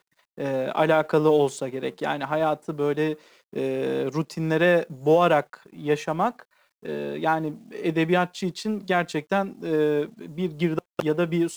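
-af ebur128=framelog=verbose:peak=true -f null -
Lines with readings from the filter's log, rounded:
Integrated loudness:
  I:         -24.7 LUFS
  Threshold: -35.0 LUFS
Loudness range:
  LRA:         2.9 LU
  Threshold: -45.1 LUFS
  LRA low:   -26.7 LUFS
  LRA high:  -23.8 LUFS
True peak:
  Peak:       -8.7 dBFS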